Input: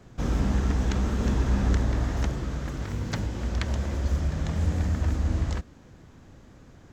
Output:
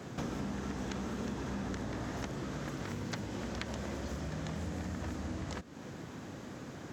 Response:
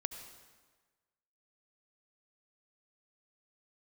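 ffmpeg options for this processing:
-af "highpass=150,acompressor=threshold=-46dB:ratio=5,volume=8.5dB"

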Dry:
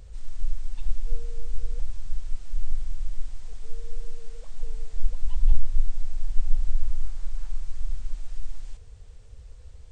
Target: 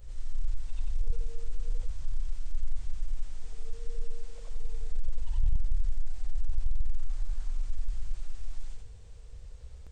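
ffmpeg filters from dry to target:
ffmpeg -i in.wav -af "afftfilt=real='re':imag='-im':win_size=8192:overlap=0.75,asoftclip=type=tanh:threshold=-21dB,volume=3.5dB" out.wav

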